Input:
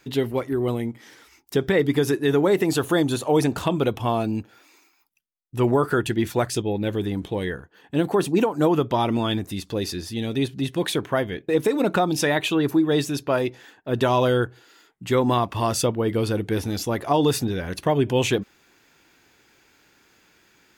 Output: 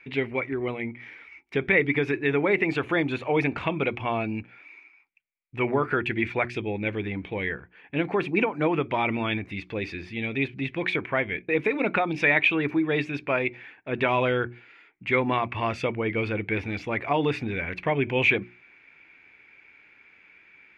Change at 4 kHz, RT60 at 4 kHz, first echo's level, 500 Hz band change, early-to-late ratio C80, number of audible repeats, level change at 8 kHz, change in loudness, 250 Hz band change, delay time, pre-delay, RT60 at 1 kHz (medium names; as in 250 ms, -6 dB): -6.5 dB, no reverb, no echo, -4.5 dB, no reverb, no echo, under -20 dB, -3.0 dB, -5.5 dB, no echo, no reverb, no reverb